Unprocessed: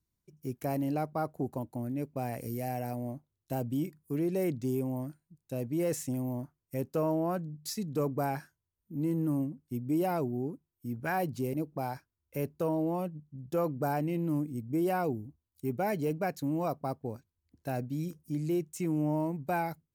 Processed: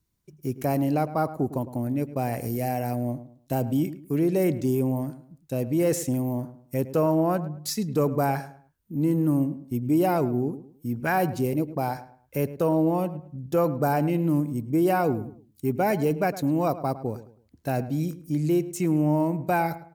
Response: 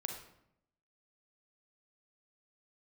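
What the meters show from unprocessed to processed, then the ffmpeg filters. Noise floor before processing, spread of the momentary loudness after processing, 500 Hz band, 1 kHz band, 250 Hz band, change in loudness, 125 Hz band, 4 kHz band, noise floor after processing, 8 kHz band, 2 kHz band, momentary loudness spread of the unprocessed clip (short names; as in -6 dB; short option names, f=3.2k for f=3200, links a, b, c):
under -85 dBFS, 10 LU, +7.5 dB, +7.5 dB, +7.5 dB, +7.5 dB, +8.0 dB, +7.5 dB, -63 dBFS, +7.5 dB, +7.5 dB, 10 LU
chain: -filter_complex "[0:a]asplit=2[a][b];[b]adelay=107,lowpass=f=2k:p=1,volume=-14dB,asplit=2[c][d];[d]adelay=107,lowpass=f=2k:p=1,volume=0.32,asplit=2[e][f];[f]adelay=107,lowpass=f=2k:p=1,volume=0.32[g];[a][c][e][g]amix=inputs=4:normalize=0,volume=7.5dB"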